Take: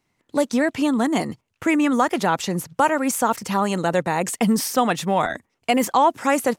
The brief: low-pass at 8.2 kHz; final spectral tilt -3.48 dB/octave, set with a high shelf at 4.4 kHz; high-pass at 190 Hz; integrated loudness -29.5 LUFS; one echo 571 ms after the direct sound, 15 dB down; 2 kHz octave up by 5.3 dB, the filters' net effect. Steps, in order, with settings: high-pass 190 Hz; low-pass 8.2 kHz; peaking EQ 2 kHz +6 dB; treble shelf 4.4 kHz +3.5 dB; delay 571 ms -15 dB; trim -9 dB

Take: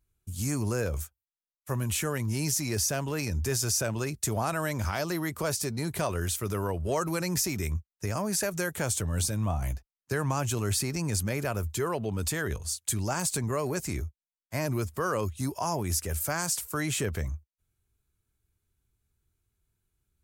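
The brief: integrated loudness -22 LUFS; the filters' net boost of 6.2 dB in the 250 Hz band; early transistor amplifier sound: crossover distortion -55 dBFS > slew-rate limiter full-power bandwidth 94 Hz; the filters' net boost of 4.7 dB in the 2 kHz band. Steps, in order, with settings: peaking EQ 250 Hz +8.5 dB; peaking EQ 2 kHz +6 dB; crossover distortion -55 dBFS; slew-rate limiter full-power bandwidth 94 Hz; trim +7 dB

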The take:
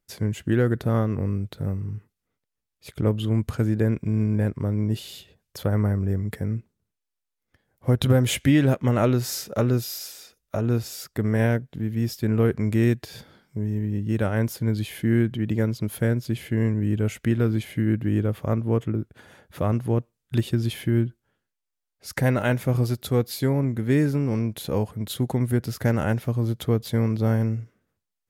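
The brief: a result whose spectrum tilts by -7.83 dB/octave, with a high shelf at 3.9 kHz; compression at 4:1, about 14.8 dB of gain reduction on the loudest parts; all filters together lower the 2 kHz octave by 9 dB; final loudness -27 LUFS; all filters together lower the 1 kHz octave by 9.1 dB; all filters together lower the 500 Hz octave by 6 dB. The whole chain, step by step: peaking EQ 500 Hz -5.5 dB; peaking EQ 1 kHz -8.5 dB; peaking EQ 2 kHz -7 dB; treble shelf 3.9 kHz -5 dB; compression 4:1, threshold -34 dBFS; trim +10 dB

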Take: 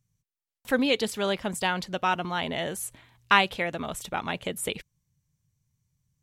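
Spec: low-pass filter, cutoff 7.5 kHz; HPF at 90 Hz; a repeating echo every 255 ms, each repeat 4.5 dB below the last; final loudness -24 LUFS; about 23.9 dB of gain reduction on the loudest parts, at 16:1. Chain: high-pass 90 Hz; low-pass 7.5 kHz; compression 16:1, threshold -38 dBFS; feedback delay 255 ms, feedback 60%, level -4.5 dB; trim +18 dB

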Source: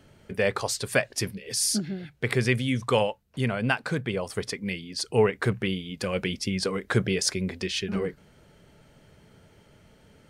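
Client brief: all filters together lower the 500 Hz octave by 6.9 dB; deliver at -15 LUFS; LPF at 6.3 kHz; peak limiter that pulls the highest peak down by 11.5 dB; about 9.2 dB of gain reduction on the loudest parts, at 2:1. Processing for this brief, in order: low-pass 6.3 kHz; peaking EQ 500 Hz -8.5 dB; compression 2:1, threshold -37 dBFS; trim +24 dB; peak limiter -4 dBFS

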